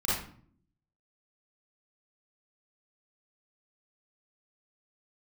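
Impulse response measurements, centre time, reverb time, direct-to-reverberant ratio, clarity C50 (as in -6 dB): 62 ms, 0.50 s, -8.5 dB, -2.5 dB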